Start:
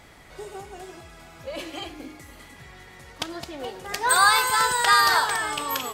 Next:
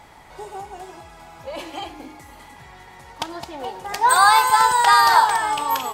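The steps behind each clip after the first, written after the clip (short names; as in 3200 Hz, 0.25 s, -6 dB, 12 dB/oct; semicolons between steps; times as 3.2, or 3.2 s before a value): bell 880 Hz +12.5 dB 0.47 oct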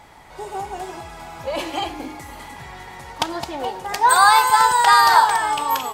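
AGC gain up to 6.5 dB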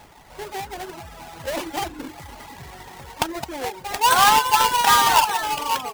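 half-waves squared off; reverb removal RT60 0.65 s; gain -5.5 dB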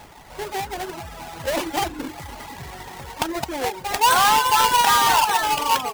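limiter -14.5 dBFS, peak gain reduction 7.5 dB; gain +3.5 dB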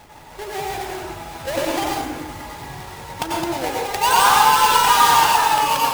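plate-style reverb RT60 0.88 s, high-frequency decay 0.8×, pre-delay 80 ms, DRR -3 dB; gain -2.5 dB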